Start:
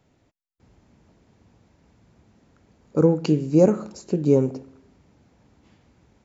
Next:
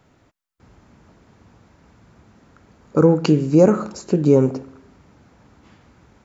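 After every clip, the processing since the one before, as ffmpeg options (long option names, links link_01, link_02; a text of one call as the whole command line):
ffmpeg -i in.wav -filter_complex "[0:a]equalizer=frequency=1300:width_type=o:width=0.98:gain=6.5,asplit=2[link_01][link_02];[link_02]alimiter=limit=-12.5dB:level=0:latency=1:release=62,volume=2.5dB[link_03];[link_01][link_03]amix=inputs=2:normalize=0,volume=-1.5dB" out.wav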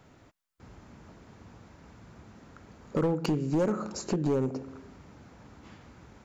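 ffmpeg -i in.wav -af "acompressor=threshold=-28dB:ratio=2.5,volume=21.5dB,asoftclip=hard,volume=-21.5dB" out.wav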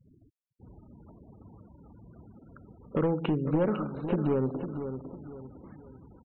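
ffmpeg -i in.wav -af "aecho=1:1:503|1006|1509|2012:0.355|0.128|0.046|0.0166,afftfilt=real='re*gte(hypot(re,im),0.00501)':imag='im*gte(hypot(re,im),0.00501)':win_size=1024:overlap=0.75,aresample=8000,aresample=44100" out.wav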